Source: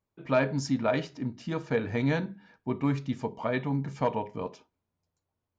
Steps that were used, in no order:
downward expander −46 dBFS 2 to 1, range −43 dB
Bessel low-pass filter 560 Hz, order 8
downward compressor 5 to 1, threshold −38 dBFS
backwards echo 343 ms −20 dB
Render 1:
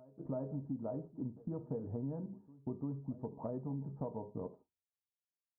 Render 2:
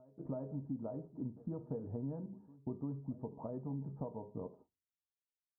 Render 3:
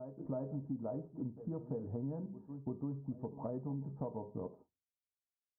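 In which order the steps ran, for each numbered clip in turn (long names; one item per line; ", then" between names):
Bessel low-pass filter, then downward compressor, then downward expander, then backwards echo
downward expander, then downward compressor, then backwards echo, then Bessel low-pass filter
backwards echo, then downward expander, then Bessel low-pass filter, then downward compressor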